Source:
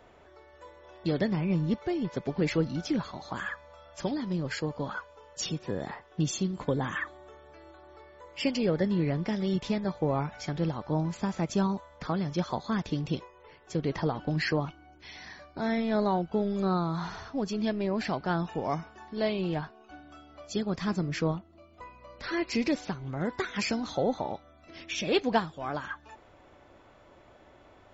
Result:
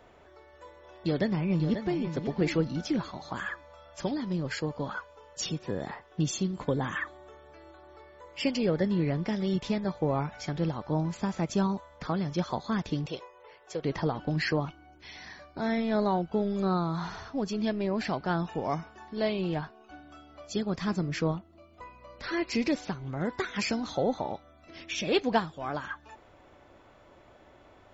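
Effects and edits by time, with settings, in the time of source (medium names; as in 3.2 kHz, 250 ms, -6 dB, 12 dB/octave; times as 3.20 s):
1.00–2.00 s: echo throw 540 ms, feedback 25%, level -8.5 dB
13.06–13.85 s: resonant low shelf 350 Hz -11 dB, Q 1.5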